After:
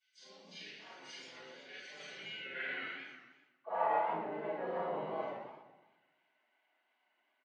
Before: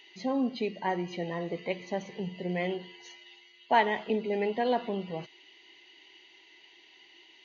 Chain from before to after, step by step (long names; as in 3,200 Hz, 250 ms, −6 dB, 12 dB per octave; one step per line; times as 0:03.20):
every overlapping window played backwards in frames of 108 ms
notch filter 4,100 Hz, Q 14
hum removal 252 Hz, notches 3
noise gate −51 dBFS, range −19 dB
low-shelf EQ 83 Hz −9.5 dB
comb filter 3.5 ms, depth 36%
reversed playback
downward compressor 12 to 1, threshold −39 dBFS, peak gain reduction 17.5 dB
reversed playback
band-pass filter sweep 5,100 Hz → 1,000 Hz, 0:01.65–0:03.60
pitch-shifted copies added −5 semitones −1 dB, +5 semitones −12 dB
convolution reverb RT60 1.0 s, pre-delay 3 ms, DRR −10.5 dB
feedback echo with a swinging delay time 124 ms, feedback 41%, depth 202 cents, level −7 dB
level −1 dB